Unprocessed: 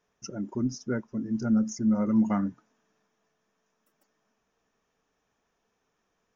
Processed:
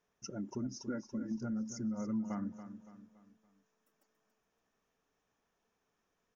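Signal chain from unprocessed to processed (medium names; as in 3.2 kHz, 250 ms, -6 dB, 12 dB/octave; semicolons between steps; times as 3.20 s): 0.75–1.38 s: comb 3.6 ms, depth 78%; compression 10:1, threshold -29 dBFS, peak gain reduction 11 dB; on a send: feedback delay 283 ms, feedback 44%, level -11.5 dB; on the sum: trim -5.5 dB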